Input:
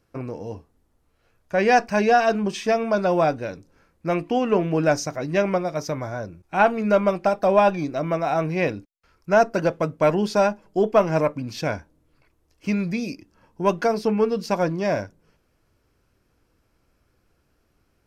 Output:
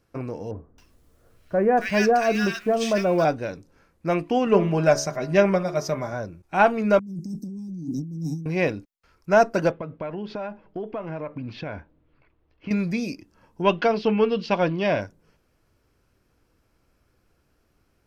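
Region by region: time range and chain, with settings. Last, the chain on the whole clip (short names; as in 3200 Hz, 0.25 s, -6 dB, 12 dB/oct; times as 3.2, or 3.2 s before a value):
0.51–3.25 G.711 law mismatch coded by mu + bell 850 Hz -7.5 dB 0.4 oct + bands offset in time lows, highs 0.27 s, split 1400 Hz
4.46–6.13 comb 5 ms, depth 52% + de-hum 71.23 Hz, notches 27
6.99–8.46 elliptic band-stop 280–6200 Hz + resonant low shelf 110 Hz -14 dB, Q 3 + negative-ratio compressor -32 dBFS
9.71–12.71 LPF 3400 Hz 24 dB/oct + compressor 8:1, threshold -28 dBFS
13.62–15.02 LPF 4600 Hz 24 dB/oct + bell 3000 Hz +12 dB 0.57 oct
whole clip: dry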